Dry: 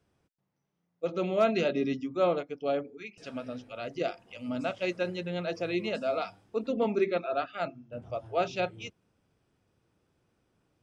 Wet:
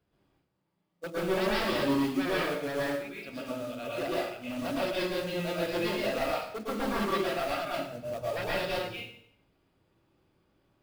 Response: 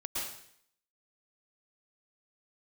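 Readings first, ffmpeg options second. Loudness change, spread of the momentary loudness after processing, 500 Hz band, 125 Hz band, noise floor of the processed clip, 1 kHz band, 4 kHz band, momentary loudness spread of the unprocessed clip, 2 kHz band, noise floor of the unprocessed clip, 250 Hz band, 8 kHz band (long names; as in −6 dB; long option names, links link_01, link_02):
0.0 dB, 9 LU, −1.5 dB, +1.0 dB, −77 dBFS, +0.5 dB, +6.0 dB, 13 LU, +4.5 dB, −80 dBFS, +1.5 dB, can't be measured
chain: -filter_complex "[0:a]aresample=11025,aeval=exprs='0.0447*(abs(mod(val(0)/0.0447+3,4)-2)-1)':channel_layout=same,aresample=44100,acrusher=bits=4:mode=log:mix=0:aa=0.000001[link_01];[1:a]atrim=start_sample=2205[link_02];[link_01][link_02]afir=irnorm=-1:irlink=0"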